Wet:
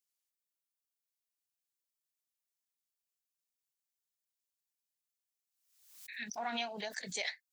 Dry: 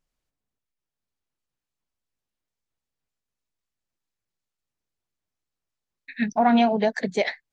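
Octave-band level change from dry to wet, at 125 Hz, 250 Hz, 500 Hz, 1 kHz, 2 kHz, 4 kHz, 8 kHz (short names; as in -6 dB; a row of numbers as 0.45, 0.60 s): -19.0 dB, -25.5 dB, -20.5 dB, -18.5 dB, -10.5 dB, -5.5 dB, n/a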